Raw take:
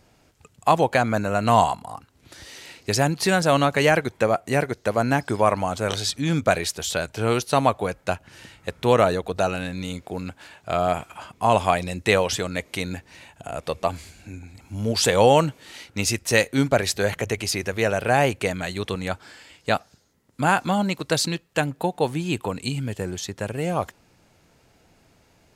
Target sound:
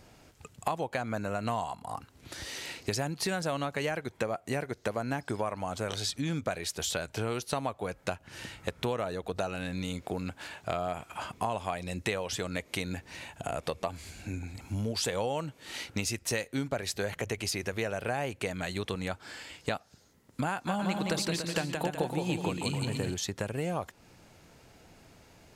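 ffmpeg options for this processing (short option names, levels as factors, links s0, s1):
-filter_complex "[0:a]acompressor=threshold=0.0251:ratio=6,asettb=1/sr,asplit=3[s0][s1][s2];[s0]atrim=end=20.504[s3];[s1]atrim=start=20.5:end=23.14,asetpts=PTS-STARTPTS,afade=t=in:d=0.004:c=qsin,afade=t=out:st=2.636:d=0.004:c=qsin,aecho=1:1:170|289|372.3|430.6|471.4:0.631|0.398|0.251|0.158|0.1,atrim=end_sample=116424[s4];[s2]atrim=start=23.136[s5];[s3][s4]acrossfade=d=0.004:c1=hsin:c2=qsin[s6];[s6][s5]acrossfade=d=0.004:c1=qsin:c2=hsin,volume=1.26"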